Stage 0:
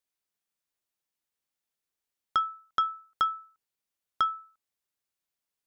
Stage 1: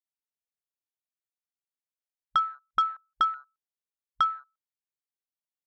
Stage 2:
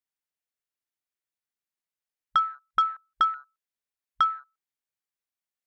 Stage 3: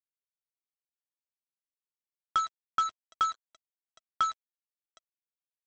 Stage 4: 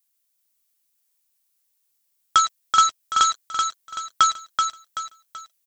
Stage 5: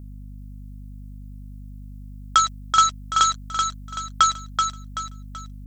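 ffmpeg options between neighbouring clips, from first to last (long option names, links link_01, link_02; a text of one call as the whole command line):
ffmpeg -i in.wav -af "afwtdn=0.00708,volume=2dB" out.wav
ffmpeg -i in.wav -af "equalizer=frequency=1900:width=1.5:gain=4" out.wav
ffmpeg -i in.wav -af "aecho=1:1:111|764:0.168|0.106,aresample=16000,acrusher=bits=4:mix=0:aa=0.5,aresample=44100,volume=-5dB" out.wav
ffmpeg -i in.wav -filter_complex "[0:a]crystalizer=i=4:c=0,asplit=2[link_01][link_02];[link_02]aecho=0:1:381|762|1143|1524|1905:0.562|0.219|0.0855|0.0334|0.013[link_03];[link_01][link_03]amix=inputs=2:normalize=0,volume=8dB" out.wav
ffmpeg -i in.wav -af "aeval=exprs='val(0)+0.0141*(sin(2*PI*50*n/s)+sin(2*PI*2*50*n/s)/2+sin(2*PI*3*50*n/s)/3+sin(2*PI*4*50*n/s)/4+sin(2*PI*5*50*n/s)/5)':channel_layout=same" out.wav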